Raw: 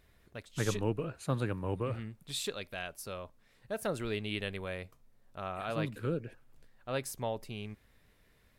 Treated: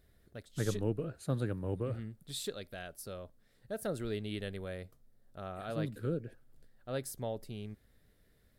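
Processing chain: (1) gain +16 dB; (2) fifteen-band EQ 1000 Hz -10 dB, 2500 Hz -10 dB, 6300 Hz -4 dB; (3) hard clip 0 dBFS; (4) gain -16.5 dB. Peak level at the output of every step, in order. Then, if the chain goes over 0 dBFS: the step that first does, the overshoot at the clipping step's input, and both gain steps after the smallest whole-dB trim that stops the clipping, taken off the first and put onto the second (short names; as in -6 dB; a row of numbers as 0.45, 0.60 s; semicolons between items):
-1.0, -2.5, -2.5, -19.0 dBFS; no overload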